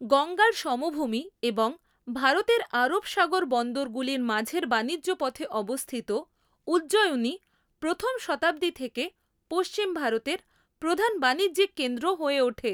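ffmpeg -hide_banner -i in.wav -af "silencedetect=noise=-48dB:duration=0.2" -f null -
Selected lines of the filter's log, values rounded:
silence_start: 1.79
silence_end: 2.07 | silence_duration: 0.28
silence_start: 6.23
silence_end: 6.67 | silence_duration: 0.44
silence_start: 7.37
silence_end: 7.82 | silence_duration: 0.45
silence_start: 9.09
silence_end: 9.51 | silence_duration: 0.42
silence_start: 10.40
silence_end: 10.82 | silence_duration: 0.42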